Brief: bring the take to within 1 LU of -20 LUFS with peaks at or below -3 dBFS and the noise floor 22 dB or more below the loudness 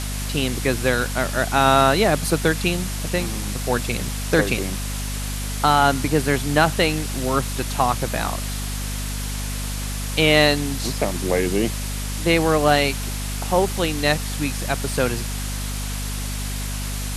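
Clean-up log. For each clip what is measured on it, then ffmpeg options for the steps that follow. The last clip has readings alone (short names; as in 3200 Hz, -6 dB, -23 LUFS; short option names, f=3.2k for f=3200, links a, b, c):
hum 50 Hz; harmonics up to 250 Hz; hum level -25 dBFS; noise floor -27 dBFS; noise floor target -44 dBFS; loudness -21.5 LUFS; peak -3.0 dBFS; loudness target -20.0 LUFS
-> -af "bandreject=f=50:t=h:w=6,bandreject=f=100:t=h:w=6,bandreject=f=150:t=h:w=6,bandreject=f=200:t=h:w=6,bandreject=f=250:t=h:w=6"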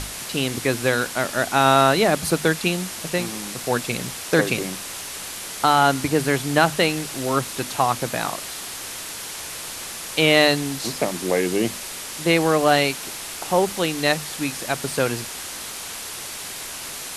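hum none; noise floor -34 dBFS; noise floor target -44 dBFS
-> -af "afftdn=nr=10:nf=-34"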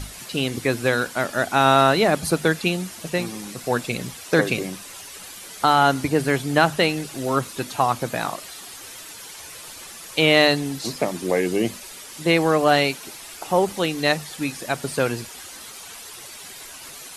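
noise floor -40 dBFS; noise floor target -44 dBFS
-> -af "afftdn=nr=6:nf=-40"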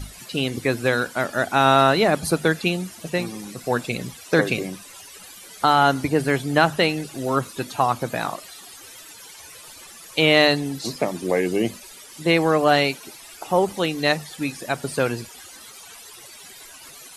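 noise floor -43 dBFS; noise floor target -44 dBFS
-> -af "afftdn=nr=6:nf=-43"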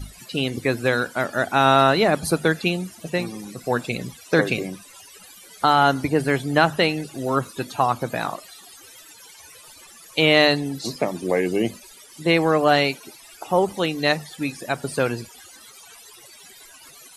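noise floor -47 dBFS; loudness -21.5 LUFS; peak -3.5 dBFS; loudness target -20.0 LUFS
-> -af "volume=1.5dB,alimiter=limit=-3dB:level=0:latency=1"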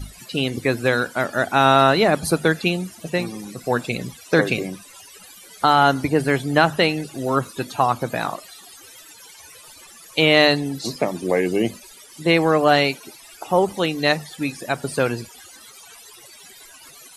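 loudness -20.0 LUFS; peak -3.0 dBFS; noise floor -45 dBFS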